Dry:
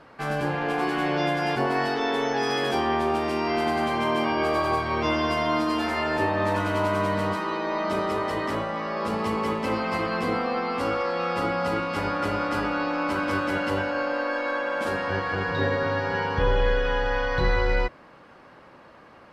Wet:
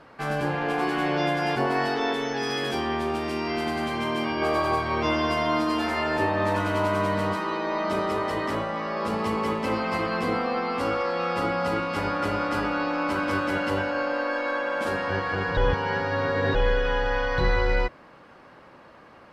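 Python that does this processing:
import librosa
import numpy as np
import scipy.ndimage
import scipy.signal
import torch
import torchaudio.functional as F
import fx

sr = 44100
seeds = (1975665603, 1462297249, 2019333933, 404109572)

y = fx.peak_eq(x, sr, hz=760.0, db=-5.5, octaves=1.8, at=(2.13, 4.42))
y = fx.edit(y, sr, fx.reverse_span(start_s=15.57, length_s=0.98), tone=tone)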